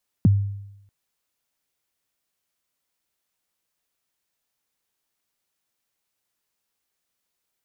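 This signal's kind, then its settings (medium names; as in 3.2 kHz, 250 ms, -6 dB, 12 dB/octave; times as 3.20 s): kick drum length 0.64 s, from 260 Hz, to 100 Hz, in 21 ms, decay 0.86 s, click off, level -10 dB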